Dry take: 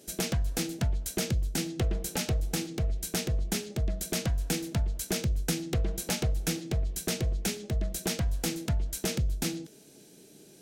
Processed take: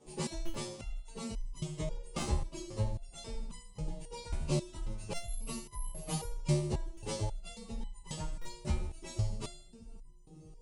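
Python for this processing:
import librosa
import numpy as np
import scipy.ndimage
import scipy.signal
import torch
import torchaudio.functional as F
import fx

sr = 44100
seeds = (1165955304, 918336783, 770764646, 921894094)

y = fx.partial_stretch(x, sr, pct=129)
y = fx.echo_split(y, sr, split_hz=390.0, low_ms=631, high_ms=81, feedback_pct=52, wet_db=-11)
y = fx.resample_bad(y, sr, factor=4, down='filtered', up='zero_stuff', at=(5.2, 6.24))
y = scipy.signal.sosfilt(scipy.signal.butter(12, 9900.0, 'lowpass', fs=sr, output='sos'), y)
y = fx.buffer_glitch(y, sr, at_s=(0.45, 2.18, 5.13, 6.93, 8.41), block=256, repeats=6)
y = fx.resonator_held(y, sr, hz=3.7, low_hz=74.0, high_hz=1000.0)
y = y * 10.0 ** (10.5 / 20.0)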